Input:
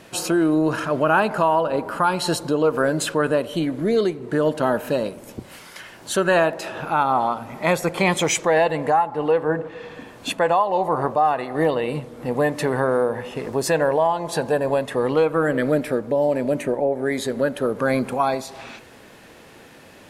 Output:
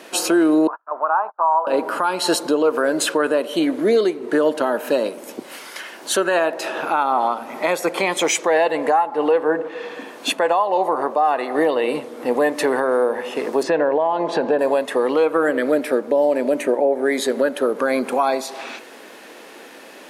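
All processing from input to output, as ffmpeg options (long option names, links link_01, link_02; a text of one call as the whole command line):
ffmpeg -i in.wav -filter_complex "[0:a]asettb=1/sr,asplit=3[link_01][link_02][link_03];[link_01]atrim=end=0.674[link_04];[link_02]atrim=start=0.67:end=1.67,asetpts=PTS-STARTPTS,afade=type=in:duration=0.004:curve=qsin,afade=type=out:start_time=0.996:duration=0.004:curve=qsin,aemphasis=mode=reproduction:type=riaa,agate=range=-45dB:threshold=-20dB:ratio=16:release=100:detection=peak,asuperpass=centerf=1000:order=4:qfactor=1.9[link_05];[link_03]atrim=start=1.666[link_06];[link_04][link_05]acrossfade=duration=0.004:curve1=hsin:curve2=qsin[link_07];[link_07][link_06]acrossfade=duration=0.004:curve1=qsin:curve2=hsin,asettb=1/sr,asplit=3[link_08][link_09][link_10];[link_08]atrim=end=13.634[link_11];[link_09]atrim=start=13.63:end=14.59,asetpts=PTS-STARTPTS,afade=type=in:duration=0.004:curve=qsin,afade=type=out:start_time=0.956:duration=0.004:curve=qsin,acompressor=threshold=-23dB:ratio=2.5:attack=3.2:release=140:knee=1:detection=peak,lowpass=3300,lowshelf=frequency=380:gain=8[link_12];[link_10]atrim=start=14.586[link_13];[link_11][link_12]acrossfade=duration=0.004:curve1=hsin:curve2=qsin[link_14];[link_14][link_13]acrossfade=duration=0.004:curve1=qsin:curve2=hsin,highpass=frequency=260:width=0.5412,highpass=frequency=260:width=1.3066,bandreject=frequency=7500:width=28,alimiter=limit=-14.5dB:level=0:latency=1:release=280,volume=6dB" out.wav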